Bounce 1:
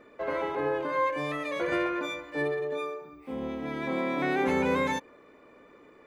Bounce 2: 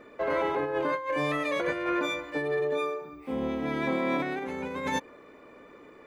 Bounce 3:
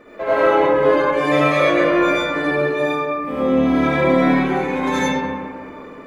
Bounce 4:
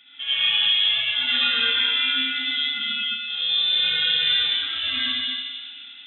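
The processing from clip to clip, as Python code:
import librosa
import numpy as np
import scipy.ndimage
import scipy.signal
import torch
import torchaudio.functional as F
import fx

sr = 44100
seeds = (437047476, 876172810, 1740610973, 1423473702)

y1 = fx.over_compress(x, sr, threshold_db=-30.0, ratio=-0.5)
y1 = y1 * 10.0 ** (2.0 / 20.0)
y2 = fx.rev_freeverb(y1, sr, rt60_s=1.9, hf_ratio=0.45, predelay_ms=35, drr_db=-9.0)
y2 = y2 * 10.0 ** (3.5 / 20.0)
y3 = y2 + 10.0 ** (-7.0 / 20.0) * np.pad(y2, (int(219 * sr / 1000.0), 0))[:len(y2)]
y3 = fx.freq_invert(y3, sr, carrier_hz=3800)
y3 = y3 * 10.0 ** (-6.5 / 20.0)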